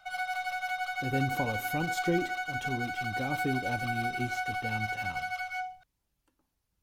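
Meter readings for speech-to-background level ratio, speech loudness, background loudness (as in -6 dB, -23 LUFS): -2.5 dB, -36.0 LUFS, -33.5 LUFS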